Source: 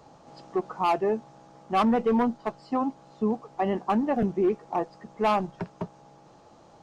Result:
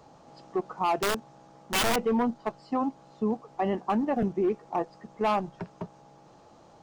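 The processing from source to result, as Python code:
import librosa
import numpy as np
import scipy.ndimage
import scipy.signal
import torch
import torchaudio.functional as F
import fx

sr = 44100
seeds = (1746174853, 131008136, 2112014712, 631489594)

p1 = fx.level_steps(x, sr, step_db=14)
p2 = x + (p1 * 10.0 ** (-1.0 / 20.0))
p3 = fx.overflow_wrap(p2, sr, gain_db=15.5, at=(0.99, 1.96))
y = p3 * 10.0 ** (-5.5 / 20.0)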